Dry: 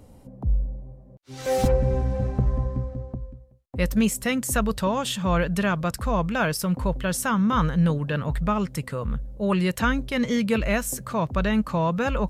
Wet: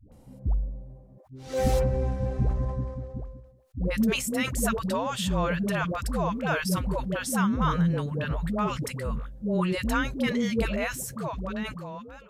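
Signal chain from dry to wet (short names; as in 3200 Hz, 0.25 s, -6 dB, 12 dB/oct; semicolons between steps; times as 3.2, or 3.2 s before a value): ending faded out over 1.73 s; dispersion highs, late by 0.121 s, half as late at 440 Hz; sustainer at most 84 dB/s; gain -3.5 dB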